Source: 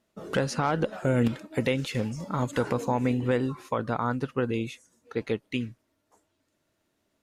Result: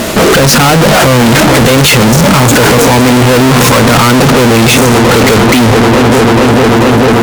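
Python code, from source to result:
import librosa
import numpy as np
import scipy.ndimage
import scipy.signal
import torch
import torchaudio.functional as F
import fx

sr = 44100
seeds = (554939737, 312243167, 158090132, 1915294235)

p1 = fx.hum_notches(x, sr, base_hz=50, count=4)
p2 = p1 + fx.echo_wet_lowpass(p1, sr, ms=442, feedback_pct=78, hz=1100.0, wet_db=-20, dry=0)
p3 = fx.power_curve(p2, sr, exponent=0.5)
p4 = fx.fuzz(p3, sr, gain_db=41.0, gate_db=-49.0)
y = F.gain(torch.from_numpy(p4), 8.5).numpy()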